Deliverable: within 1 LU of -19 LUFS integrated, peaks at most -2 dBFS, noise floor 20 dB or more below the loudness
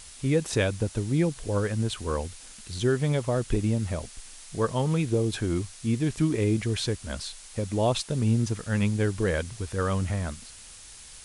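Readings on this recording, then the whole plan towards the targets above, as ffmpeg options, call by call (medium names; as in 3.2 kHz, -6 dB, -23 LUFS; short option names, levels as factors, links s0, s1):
noise floor -47 dBFS; noise floor target -48 dBFS; loudness -27.5 LUFS; peak level -13.0 dBFS; loudness target -19.0 LUFS
-> -af "afftdn=nr=6:nf=-47"
-af "volume=2.66"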